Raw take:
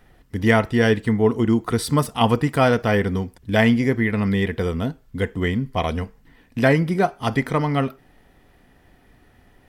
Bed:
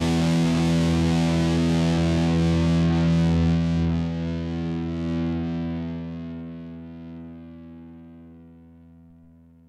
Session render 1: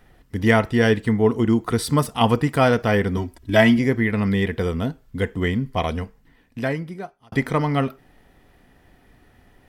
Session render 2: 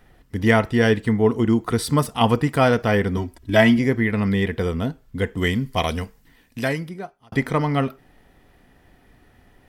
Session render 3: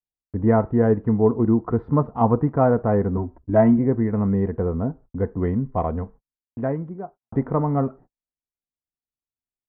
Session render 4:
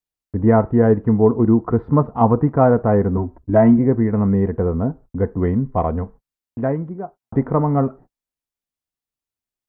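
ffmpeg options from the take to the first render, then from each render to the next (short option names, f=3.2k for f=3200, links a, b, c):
-filter_complex "[0:a]asettb=1/sr,asplit=3[a][b][c];[a]atrim=end=3.174[d];[b]atrim=start=3.17:end=3.79,asetpts=PTS-STARTPTS,afade=t=in:d=0.004:c=qsin,afade=t=out:st=0.616:d=0.004:c=qsin,aecho=1:1:3.1:0.82,atrim=end_sample=27342[e];[c]atrim=start=3.786[f];[d][e]acrossfade=d=0.004:c1=hsin:c2=qsin[g];[g][f]acrossfade=d=0.004:c1=qsin:c2=hsin,asplit=2[h][i];[h]atrim=end=7.32,asetpts=PTS-STARTPTS,afade=t=out:st=5.75:d=1.57[j];[i]atrim=start=7.32,asetpts=PTS-STARTPTS,afade=t=in:d=0.004:c=hsin[k];[j][k]concat=n=2:v=0:a=1"
-filter_complex "[0:a]asettb=1/sr,asplit=3[a][b][c];[a]atrim=end=5.374[d];[b]atrim=start=5.37:end=6.89,asetpts=PTS-STARTPTS,afade=t=in:d=0.004:c=qsin,afade=t=out:st=1.516:d=0.004:c=qsin,highshelf=f=3.2k:g=11.5[e];[c]atrim=start=6.886[f];[d][e]acrossfade=d=0.004:c1=hsin:c2=qsin[g];[g][f]acrossfade=d=0.004:c1=qsin:c2=hsin"
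-af "agate=range=-50dB:threshold=-42dB:ratio=16:detection=peak,lowpass=f=1.1k:w=0.5412,lowpass=f=1.1k:w=1.3066"
-af "volume=4dB,alimiter=limit=-3dB:level=0:latency=1"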